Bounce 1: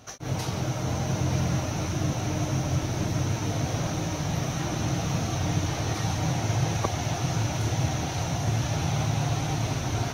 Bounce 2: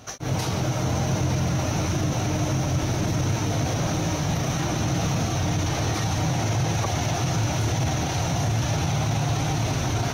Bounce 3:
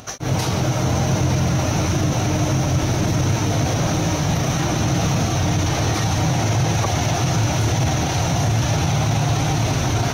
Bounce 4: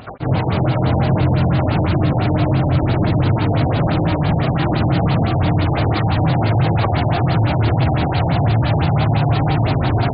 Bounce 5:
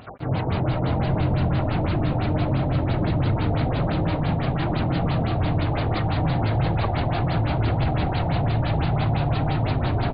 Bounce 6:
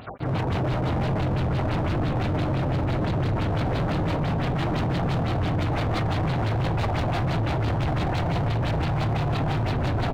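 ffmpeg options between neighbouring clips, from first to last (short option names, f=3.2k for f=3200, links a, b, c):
-af "alimiter=limit=-21dB:level=0:latency=1:release=19,volume=5dB"
-af "acompressor=mode=upward:threshold=-45dB:ratio=2.5,volume=5dB"
-af "afftfilt=real='re*lt(b*sr/1024,900*pow(5000/900,0.5+0.5*sin(2*PI*5.9*pts/sr)))':imag='im*lt(b*sr/1024,900*pow(5000/900,0.5+0.5*sin(2*PI*5.9*pts/sr)))':win_size=1024:overlap=0.75,volume=3.5dB"
-filter_complex "[0:a]asplit=6[a][b][c][d][e][f];[b]adelay=193,afreqshift=-53,volume=-8.5dB[g];[c]adelay=386,afreqshift=-106,volume=-15.1dB[h];[d]adelay=579,afreqshift=-159,volume=-21.6dB[i];[e]adelay=772,afreqshift=-212,volume=-28.2dB[j];[f]adelay=965,afreqshift=-265,volume=-34.7dB[k];[a][g][h][i][j][k]amix=inputs=6:normalize=0,volume=-7dB"
-af "asoftclip=type=hard:threshold=-24dB,volume=2dB"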